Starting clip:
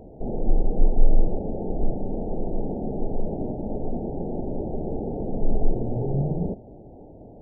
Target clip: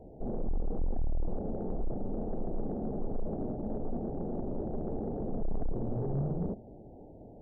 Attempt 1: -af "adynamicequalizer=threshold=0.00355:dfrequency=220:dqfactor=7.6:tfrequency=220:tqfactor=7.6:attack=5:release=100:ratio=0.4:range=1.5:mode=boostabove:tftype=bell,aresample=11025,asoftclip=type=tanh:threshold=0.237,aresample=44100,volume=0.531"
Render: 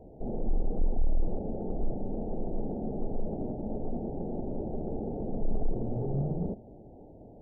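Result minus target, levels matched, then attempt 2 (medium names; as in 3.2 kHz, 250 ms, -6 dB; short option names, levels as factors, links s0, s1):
saturation: distortion -6 dB
-af "adynamicequalizer=threshold=0.00355:dfrequency=220:dqfactor=7.6:tfrequency=220:tqfactor=7.6:attack=5:release=100:ratio=0.4:range=1.5:mode=boostabove:tftype=bell,aresample=11025,asoftclip=type=tanh:threshold=0.106,aresample=44100,volume=0.531"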